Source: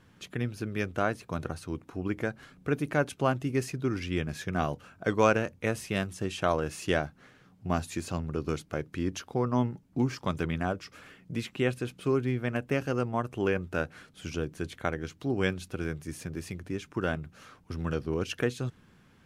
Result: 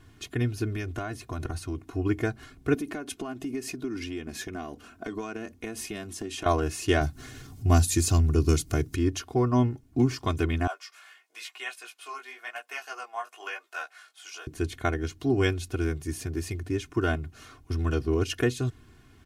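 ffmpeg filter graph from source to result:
ffmpeg -i in.wav -filter_complex "[0:a]asettb=1/sr,asplit=3[link_01][link_02][link_03];[link_01]atrim=end=0.704[link_04];[link_02]atrim=start=0.7:end=1.82,asetpts=PTS-STARTPTS,afade=type=in:duration=0.004:curve=qsin,afade=type=out:start_time=1.116:duration=0.004:curve=qsin,bandreject=frequency=440:width=8.5,acompressor=threshold=-32dB:ratio=6:attack=3.2:release=140:knee=1:detection=peak[link_05];[link_03]atrim=start=1.816[link_06];[link_04][link_05]acrossfade=duration=0.004:curve1=hsin:curve2=qsin[link_07];[link_07][link_06]acrossfade=duration=0.004:curve1=qsin:curve2=hsin,asettb=1/sr,asplit=3[link_08][link_09][link_10];[link_08]atrim=end=2.744[link_11];[link_09]atrim=start=2.74:end=6.46,asetpts=PTS-STARTPTS,afade=type=in:duration=0.004:curve=qsin,afade=type=out:start_time=3.716:duration=0.004:curve=qsin,acompressor=threshold=-34dB:ratio=12:attack=3.2:release=140:knee=1:detection=peak,lowshelf=frequency=160:width_type=q:width=3:gain=-6.5[link_12];[link_10]atrim=start=6.456[link_13];[link_11][link_12]acrossfade=duration=0.004:curve1=hsin:curve2=qsin[link_14];[link_14][link_13]acrossfade=duration=0.004:curve1=qsin:curve2=hsin,asettb=1/sr,asplit=3[link_15][link_16][link_17];[link_15]atrim=end=7.014[link_18];[link_16]atrim=start=7.01:end=8.96,asetpts=PTS-STARTPTS,afade=type=in:duration=0.004:curve=qsin,afade=type=out:start_time=1.946:duration=0.004:curve=qsin,bass=frequency=250:gain=7,treble=frequency=4000:gain=11,acompressor=mode=upward:threshold=-39dB:ratio=2.5:attack=3.2:release=140:knee=2.83:detection=peak[link_19];[link_17]atrim=start=8.956[link_20];[link_18][link_19]acrossfade=duration=0.004:curve1=hsin:curve2=qsin[link_21];[link_21][link_20]acrossfade=duration=0.004:curve1=qsin:curve2=hsin,asettb=1/sr,asplit=3[link_22][link_23][link_24];[link_22]atrim=end=10.674[link_25];[link_23]atrim=start=10.67:end=14.47,asetpts=PTS-STARTPTS,afade=type=in:duration=0.004:curve=qsin,afade=type=out:start_time=3.796:duration=0.004:curve=qsin,highpass=frequency=740:width=0.5412,highpass=frequency=740:width=1.3066,flanger=delay=15:depth=6.3:speed=1[link_26];[link_24]atrim=start=14.466[link_27];[link_25][link_26]acrossfade=duration=0.004:curve1=hsin:curve2=qsin[link_28];[link_28][link_27]acrossfade=duration=0.004:curve1=qsin:curve2=hsin,bass=frequency=250:gain=7,treble=frequency=4000:gain=4,aecho=1:1:2.8:0.85" out.wav

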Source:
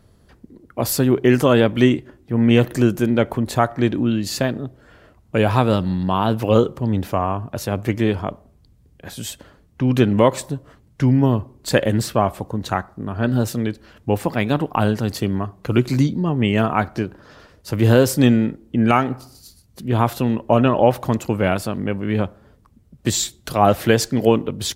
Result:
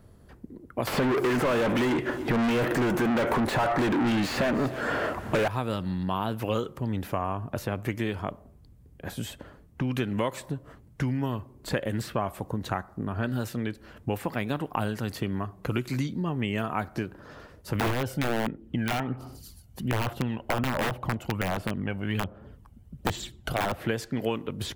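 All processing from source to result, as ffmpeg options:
ffmpeg -i in.wav -filter_complex "[0:a]asettb=1/sr,asplit=3[link_01][link_02][link_03];[link_01]atrim=end=0.874[link_04];[link_02]atrim=start=0.87:end=5.48,asetpts=PTS-STARTPTS,afade=type=in:duration=0.004:curve=qsin,afade=type=out:start_time=4.606:duration=0.004:curve=qsin,asplit=2[link_05][link_06];[link_06]highpass=frequency=720:poles=1,volume=40dB,asoftclip=type=tanh:threshold=-1dB[link_07];[link_05][link_07]amix=inputs=2:normalize=0,lowpass=frequency=2000:poles=1,volume=-6dB,aecho=1:1:298:0.0668,atrim=end_sample=203301[link_08];[link_03]atrim=start=5.476[link_09];[link_04][link_08]acrossfade=duration=0.004:curve1=hsin:curve2=qsin[link_10];[link_10][link_09]acrossfade=duration=0.004:curve1=qsin:curve2=hsin,asettb=1/sr,asplit=3[link_11][link_12][link_13];[link_11]atrim=end=17.754[link_14];[link_12]atrim=start=17.75:end=23.72,asetpts=PTS-STARTPTS,afade=type=in:duration=0.004:curve=qsin,afade=type=out:start_time=5.966:duration=0.004:curve=qsin,equalizer=frequency=3000:width_type=o:width=0.21:gain=7,aphaser=in_gain=1:out_gain=1:delay=1.4:decay=0.46:speed=1.3:type=sinusoidal,aeval=exprs='(mod(2.24*val(0)+1,2)-1)/2.24':channel_layout=same[link_15];[link_13]atrim=start=23.716[link_16];[link_14][link_15]acrossfade=duration=0.004:curve1=hsin:curve2=qsin[link_17];[link_17][link_16]acrossfade=duration=0.004:curve1=qsin:curve2=hsin,equalizer=frequency=4600:width=0.64:gain=-6.5,acrossover=split=1300|4000[link_18][link_19][link_20];[link_18]acompressor=threshold=-28dB:ratio=4[link_21];[link_19]acompressor=threshold=-35dB:ratio=4[link_22];[link_20]acompressor=threshold=-46dB:ratio=4[link_23];[link_21][link_22][link_23]amix=inputs=3:normalize=0" out.wav

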